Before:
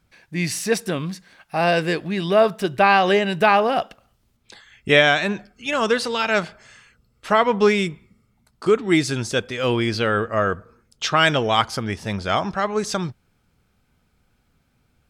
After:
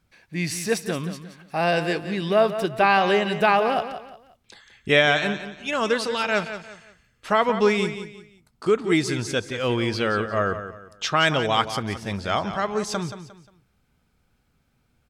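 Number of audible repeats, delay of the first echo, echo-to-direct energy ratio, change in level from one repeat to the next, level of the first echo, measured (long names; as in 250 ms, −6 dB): 3, 177 ms, −10.5 dB, −10.0 dB, −11.0 dB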